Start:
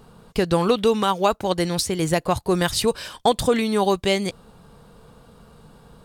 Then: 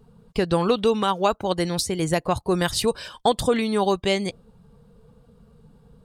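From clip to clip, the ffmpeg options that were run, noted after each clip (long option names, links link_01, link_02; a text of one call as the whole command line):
ffmpeg -i in.wav -af "afftdn=noise_reduction=12:noise_floor=-42,volume=-1.5dB" out.wav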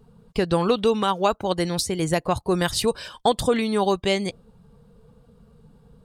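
ffmpeg -i in.wav -af anull out.wav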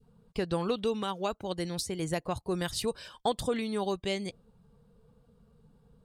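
ffmpeg -i in.wav -af "adynamicequalizer=threshold=0.0224:dfrequency=990:dqfactor=0.87:tfrequency=990:tqfactor=0.87:attack=5:release=100:ratio=0.375:range=2.5:mode=cutabove:tftype=bell,volume=-9dB" out.wav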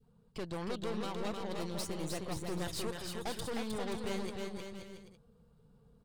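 ffmpeg -i in.wav -af "aeval=exprs='(tanh(56.2*val(0)+0.7)-tanh(0.7))/56.2':channel_layout=same,aecho=1:1:310|527|678.9|785.2|859.7:0.631|0.398|0.251|0.158|0.1,volume=-1dB" out.wav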